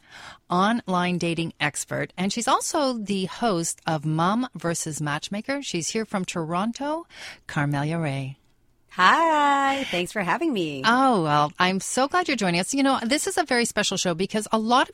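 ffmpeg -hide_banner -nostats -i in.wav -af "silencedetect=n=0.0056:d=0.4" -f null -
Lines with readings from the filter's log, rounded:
silence_start: 8.33
silence_end: 8.90 | silence_duration: 0.57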